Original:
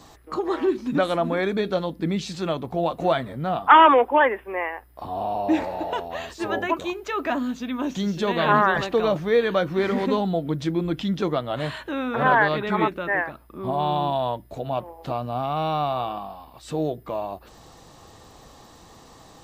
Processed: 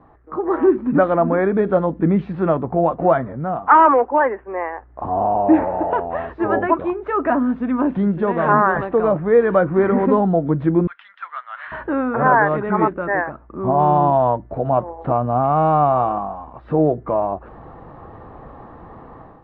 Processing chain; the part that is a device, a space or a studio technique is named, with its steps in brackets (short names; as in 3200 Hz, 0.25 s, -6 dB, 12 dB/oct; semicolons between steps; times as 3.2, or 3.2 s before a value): 10.87–11.72 inverse Chebyshev high-pass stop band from 410 Hz, stop band 60 dB; action camera in a waterproof case (LPF 1600 Hz 24 dB/oct; AGC gain up to 11 dB; gain -1 dB; AAC 48 kbps 22050 Hz)